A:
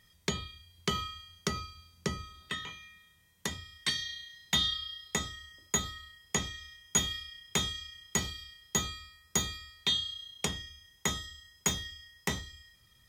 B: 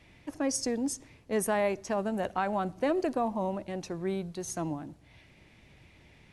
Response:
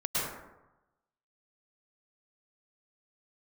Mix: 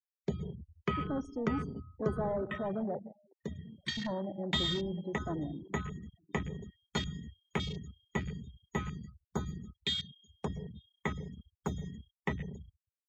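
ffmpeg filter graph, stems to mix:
-filter_complex "[0:a]volume=0.891,asplit=3[s0][s1][s2];[s1]volume=0.237[s3];[s2]volume=0.188[s4];[1:a]agate=range=0.316:threshold=0.002:ratio=16:detection=peak,highshelf=f=7700:g=-8,asoftclip=type=tanh:threshold=0.0237,adelay=700,volume=1.06,asplit=3[s5][s6][s7];[s5]atrim=end=3,asetpts=PTS-STARTPTS,afade=t=out:st=2.996:d=0.004:c=hsin[s8];[s6]atrim=start=3:end=3.97,asetpts=PTS-STARTPTS,volume=0[s9];[s7]atrim=start=3.97,asetpts=PTS-STARTPTS,afade=t=in:d=0.004:c=hsin[s10];[s8][s9][s10]concat=n=3:v=0:a=1,asplit=3[s11][s12][s13];[s12]volume=0.1[s14];[s13]volume=0.178[s15];[2:a]atrim=start_sample=2205[s16];[s3][s14]amix=inputs=2:normalize=0[s17];[s17][s16]afir=irnorm=-1:irlink=0[s18];[s4][s15]amix=inputs=2:normalize=0,aecho=0:1:885|1770|2655|3540|4425|5310:1|0.4|0.16|0.064|0.0256|0.0102[s19];[s0][s11][s18][s19]amix=inputs=4:normalize=0,afftfilt=real='re*gte(hypot(re,im),0.0251)':imag='im*gte(hypot(re,im),0.0251)':win_size=1024:overlap=0.75,highshelf=f=3000:g=-9.5,afwtdn=0.0112"

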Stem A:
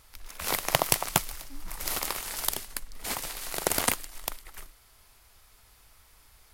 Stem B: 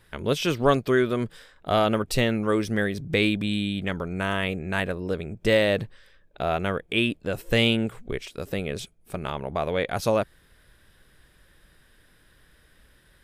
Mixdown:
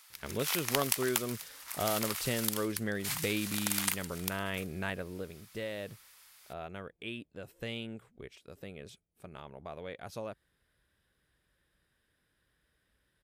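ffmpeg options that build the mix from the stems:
-filter_complex "[0:a]highpass=1300,volume=1.26[s0];[1:a]highpass=46,adelay=100,volume=0.531,afade=t=out:st=4.87:d=0.52:silence=0.281838[s1];[s0][s1]amix=inputs=2:normalize=0,acompressor=threshold=0.0126:ratio=1.5"

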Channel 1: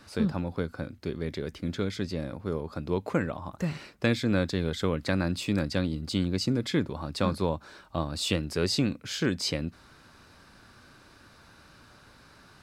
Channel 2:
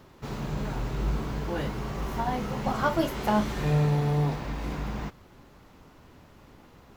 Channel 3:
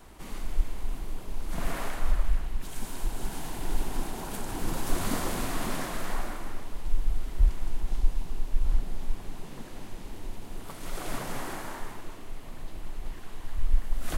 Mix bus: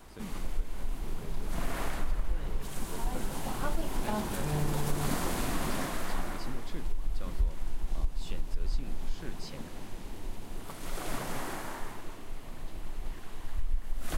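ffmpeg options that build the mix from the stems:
-filter_complex "[0:a]volume=0.141[s0];[1:a]dynaudnorm=f=820:g=7:m=2.37,adelay=800,volume=0.188[s1];[2:a]volume=0.891[s2];[s0][s1][s2]amix=inputs=3:normalize=0,acompressor=threshold=0.0708:ratio=5"

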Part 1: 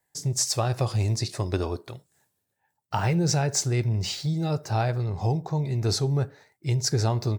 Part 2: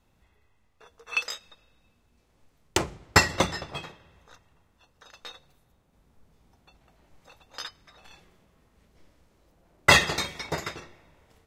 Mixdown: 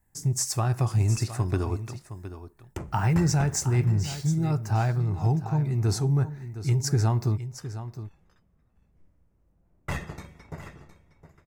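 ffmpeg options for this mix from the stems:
-filter_complex "[0:a]equalizer=f=530:t=o:w=0.65:g=-12,volume=1.26,asplit=2[s0][s1];[s1]volume=0.237[s2];[1:a]bass=f=250:g=12,treble=f=4000:g=-3,aeval=exprs='(tanh(3.98*val(0)+0.45)-tanh(0.45))/3.98':c=same,volume=0.282,asplit=2[s3][s4];[s4]volume=0.211[s5];[s2][s5]amix=inputs=2:normalize=0,aecho=0:1:713:1[s6];[s0][s3][s6]amix=inputs=3:normalize=0,equalizer=f=3900:t=o:w=1.2:g=-12.5"

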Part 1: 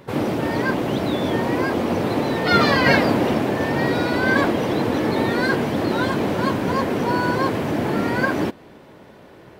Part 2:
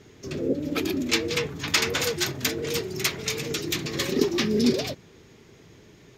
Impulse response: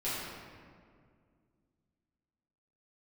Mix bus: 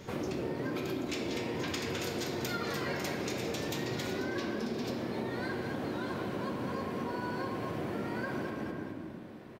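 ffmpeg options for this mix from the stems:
-filter_complex "[0:a]bandreject=f=860:w=27,volume=0.266,asplit=3[s0][s1][s2];[s1]volume=0.473[s3];[s2]volume=0.531[s4];[1:a]acompressor=threshold=0.0398:ratio=6,volume=0.891,asplit=2[s5][s6];[s6]volume=0.668[s7];[2:a]atrim=start_sample=2205[s8];[s3][s7]amix=inputs=2:normalize=0[s9];[s9][s8]afir=irnorm=-1:irlink=0[s10];[s4]aecho=0:1:210|420|630|840|1050:1|0.33|0.109|0.0359|0.0119[s11];[s0][s5][s10][s11]amix=inputs=4:normalize=0,acompressor=threshold=0.0224:ratio=6"

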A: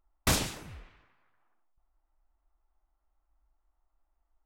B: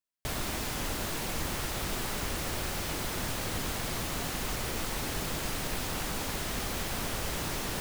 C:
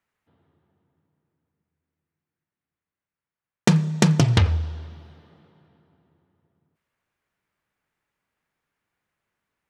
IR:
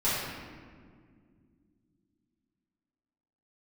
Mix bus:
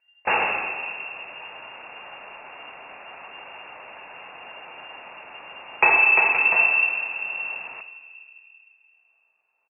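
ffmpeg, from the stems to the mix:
-filter_complex "[0:a]volume=0.562,asplit=2[s0][s1];[s1]volume=0.668[s2];[1:a]volume=0.266,asplit=2[s3][s4];[s4]volume=0.0891[s5];[2:a]adelay=2150,volume=0.398,afade=t=out:st=5.85:d=0.48:silence=0.473151,asplit=2[s6][s7];[s7]volume=0.708[s8];[3:a]atrim=start_sample=2205[s9];[s2][s5][s8]amix=inputs=3:normalize=0[s10];[s10][s9]afir=irnorm=-1:irlink=0[s11];[s0][s3][s6][s11]amix=inputs=4:normalize=0,equalizer=f=2000:t=o:w=0.74:g=14,lowpass=f=2400:t=q:w=0.5098,lowpass=f=2400:t=q:w=0.6013,lowpass=f=2400:t=q:w=0.9,lowpass=f=2400:t=q:w=2.563,afreqshift=-2800,lowshelf=f=85:g=-6.5"

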